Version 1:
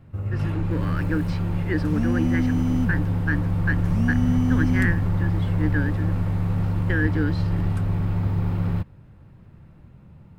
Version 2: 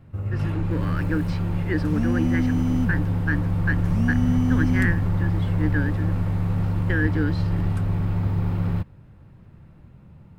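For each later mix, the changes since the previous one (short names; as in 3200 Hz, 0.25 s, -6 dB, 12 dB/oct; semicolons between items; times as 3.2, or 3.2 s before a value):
none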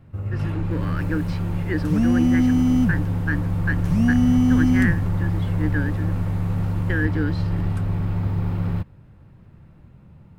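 second sound +6.0 dB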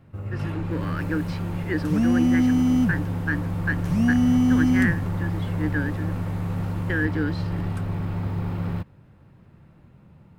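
master: add low shelf 94 Hz -10 dB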